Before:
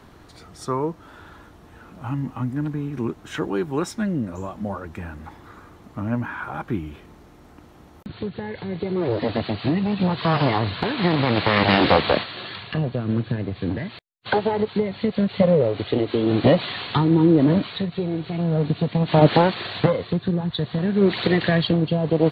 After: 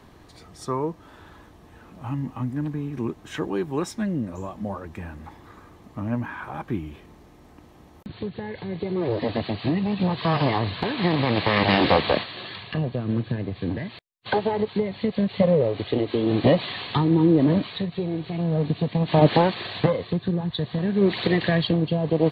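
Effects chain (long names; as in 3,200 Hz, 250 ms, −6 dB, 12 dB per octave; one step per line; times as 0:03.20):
notch filter 1,400 Hz, Q 8.2
level −2 dB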